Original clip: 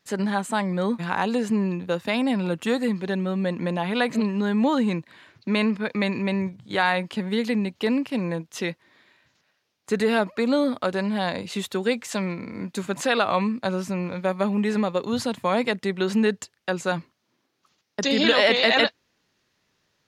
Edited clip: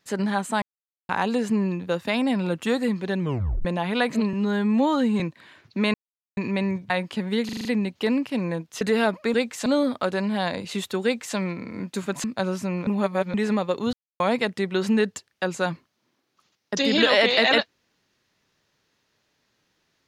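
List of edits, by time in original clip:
0.62–1.09 s: mute
3.20 s: tape stop 0.45 s
4.33–4.91 s: stretch 1.5×
5.65–6.08 s: mute
6.61–6.90 s: delete
7.45 s: stutter 0.04 s, 6 plays
8.61–9.94 s: delete
11.85–12.17 s: copy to 10.47 s
13.05–13.50 s: delete
14.13–14.60 s: reverse
15.19–15.46 s: mute

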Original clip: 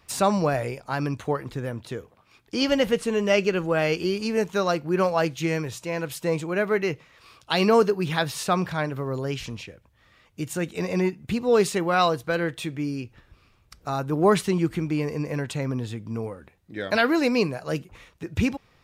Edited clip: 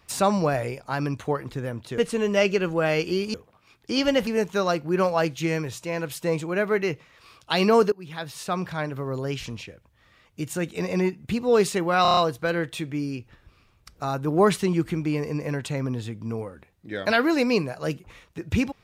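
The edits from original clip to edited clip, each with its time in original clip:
1.98–2.91 s: move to 4.27 s
7.92–9.55 s: fade in equal-power, from -19.5 dB
12.02 s: stutter 0.03 s, 6 plays

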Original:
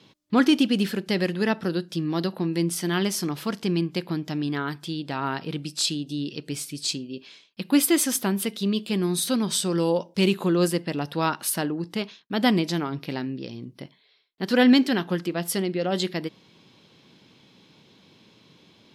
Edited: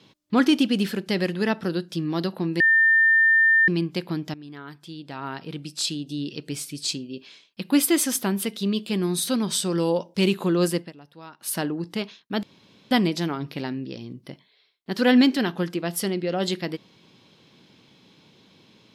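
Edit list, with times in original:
2.60–3.68 s: bleep 1.8 kHz -14 dBFS
4.34–6.29 s: fade in, from -16.5 dB
10.78–11.54 s: dip -19 dB, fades 0.14 s
12.43 s: insert room tone 0.48 s

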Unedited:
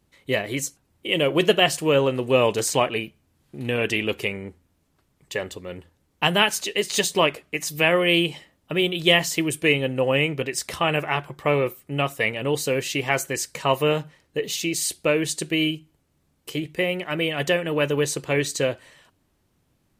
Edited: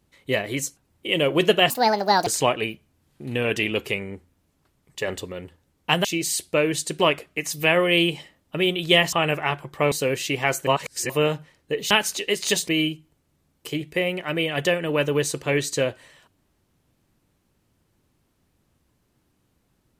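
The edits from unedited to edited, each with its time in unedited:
1.70–2.60 s: speed 159%
5.41–5.66 s: gain +3.5 dB
6.38–7.16 s: swap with 14.56–15.51 s
9.29–10.78 s: delete
11.57–12.57 s: delete
13.32–13.75 s: reverse

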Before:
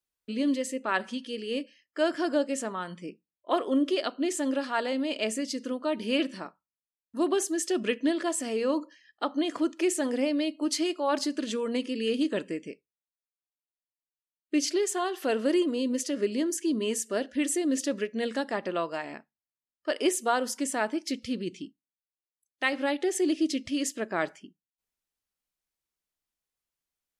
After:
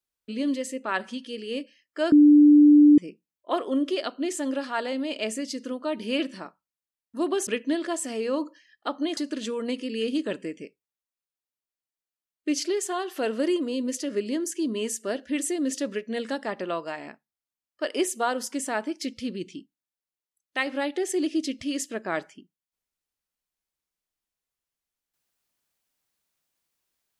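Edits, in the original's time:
2.12–2.98 s: bleep 295 Hz -10.5 dBFS
7.47–7.83 s: delete
9.53–11.23 s: delete

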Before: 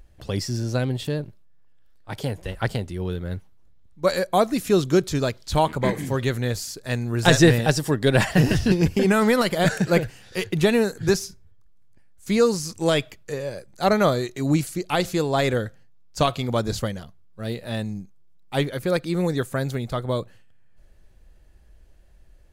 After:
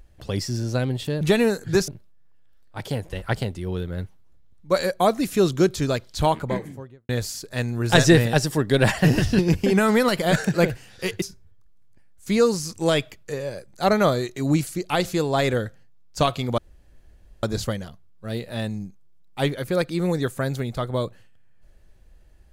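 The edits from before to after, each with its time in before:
5.51–6.42 s: studio fade out
10.55–11.22 s: move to 1.21 s
16.58 s: insert room tone 0.85 s

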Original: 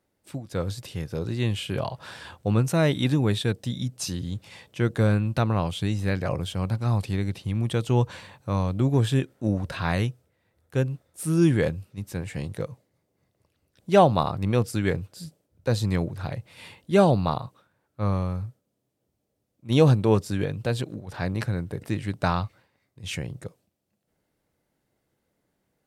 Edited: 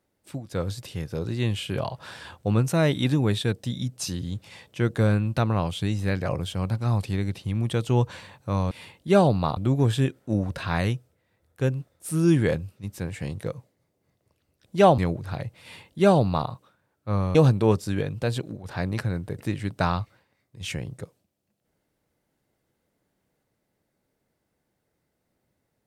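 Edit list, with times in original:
14.12–15.90 s: delete
16.54–17.40 s: copy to 8.71 s
18.27–19.78 s: delete

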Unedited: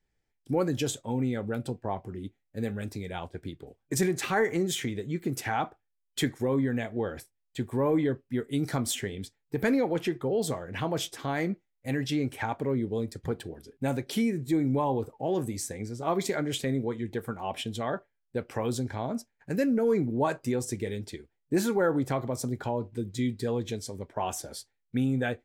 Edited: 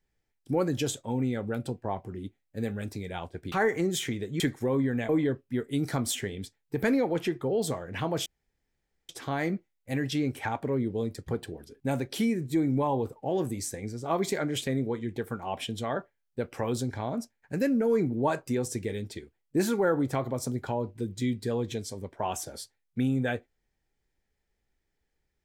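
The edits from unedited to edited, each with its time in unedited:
3.52–4.28 s: delete
5.16–6.19 s: delete
6.88–7.89 s: delete
11.06 s: insert room tone 0.83 s

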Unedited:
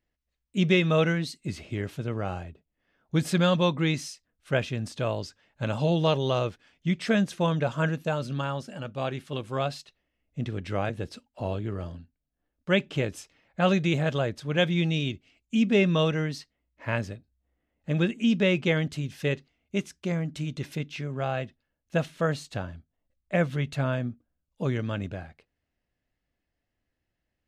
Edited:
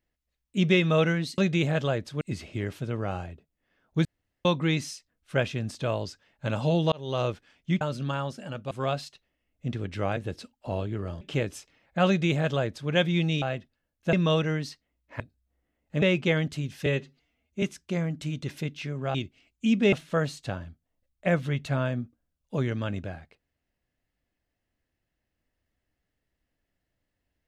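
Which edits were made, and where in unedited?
3.22–3.62 s: room tone
6.09–6.42 s: fade in
6.98–8.11 s: delete
9.01–9.44 s: delete
11.94–12.83 s: delete
13.69–14.52 s: copy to 1.38 s
15.04–15.82 s: swap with 21.29–22.00 s
16.89–17.14 s: delete
17.96–18.42 s: delete
19.26–19.77 s: stretch 1.5×

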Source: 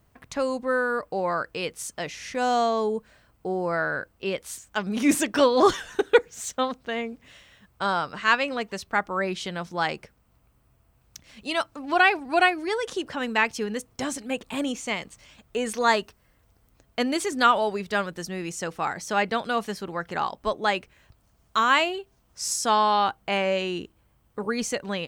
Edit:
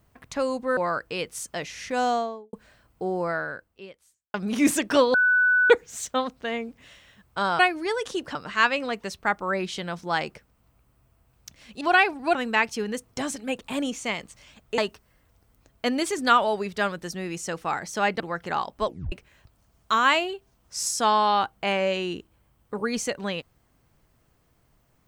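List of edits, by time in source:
0.77–1.21 s: delete
2.44–2.97 s: studio fade out
3.65–4.78 s: fade out quadratic
5.58–6.14 s: bleep 1.49 kHz -16.5 dBFS
11.49–11.87 s: delete
12.41–13.17 s: move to 8.03 s
15.60–15.92 s: delete
19.34–19.85 s: delete
20.51 s: tape stop 0.26 s

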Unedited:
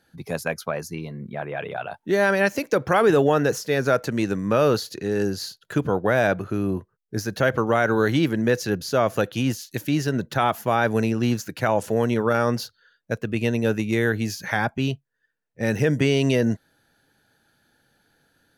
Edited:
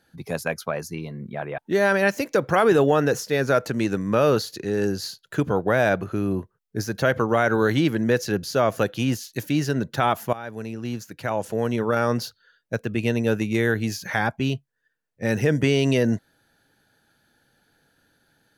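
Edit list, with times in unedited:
1.58–1.96 s: delete
10.71–12.60 s: fade in, from -17 dB

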